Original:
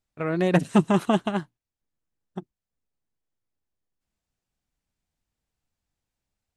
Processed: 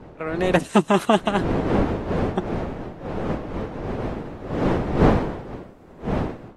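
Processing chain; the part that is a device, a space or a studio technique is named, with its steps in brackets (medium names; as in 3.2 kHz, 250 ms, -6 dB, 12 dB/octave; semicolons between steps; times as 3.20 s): Bessel high-pass 290 Hz, order 2; smartphone video outdoors (wind noise 460 Hz -37 dBFS; level rider gain up to 14.5 dB; AAC 48 kbps 44.1 kHz)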